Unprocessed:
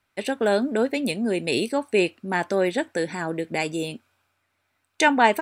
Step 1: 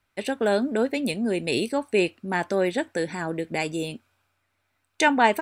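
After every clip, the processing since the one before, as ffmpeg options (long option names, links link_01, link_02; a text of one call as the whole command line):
ffmpeg -i in.wav -af "lowshelf=frequency=66:gain=10.5,volume=-1.5dB" out.wav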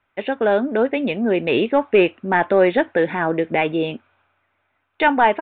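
ffmpeg -i in.wav -filter_complex "[0:a]dynaudnorm=framelen=260:gausssize=9:maxgain=5dB,asplit=2[link_01][link_02];[link_02]highpass=frequency=720:poles=1,volume=11dB,asoftclip=type=tanh:threshold=-4.5dB[link_03];[link_01][link_03]amix=inputs=2:normalize=0,lowpass=frequency=1200:poles=1,volume=-6dB,aresample=8000,aresample=44100,volume=3.5dB" out.wav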